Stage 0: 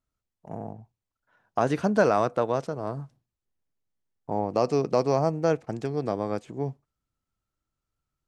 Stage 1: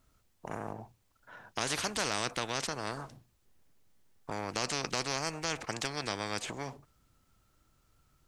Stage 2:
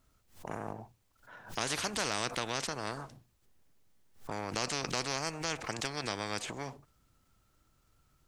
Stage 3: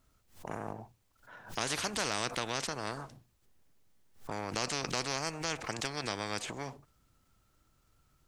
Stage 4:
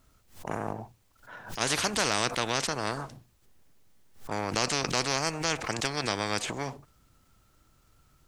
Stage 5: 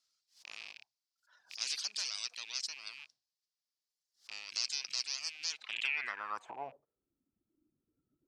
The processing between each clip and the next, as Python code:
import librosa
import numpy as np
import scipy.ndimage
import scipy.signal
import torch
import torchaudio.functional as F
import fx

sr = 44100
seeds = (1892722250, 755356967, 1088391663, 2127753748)

y1 = fx.spectral_comp(x, sr, ratio=4.0)
y1 = y1 * librosa.db_to_amplitude(-6.0)
y2 = fx.pre_swell(y1, sr, db_per_s=150.0)
y2 = y2 * librosa.db_to_amplitude(-1.0)
y3 = y2
y4 = fx.attack_slew(y3, sr, db_per_s=230.0)
y4 = y4 * librosa.db_to_amplitude(6.5)
y5 = fx.rattle_buzz(y4, sr, strikes_db=-40.0, level_db=-18.0)
y5 = fx.filter_sweep_bandpass(y5, sr, from_hz=4900.0, to_hz=300.0, start_s=5.51, end_s=7.16, q=3.5)
y5 = fx.dereverb_blind(y5, sr, rt60_s=1.7)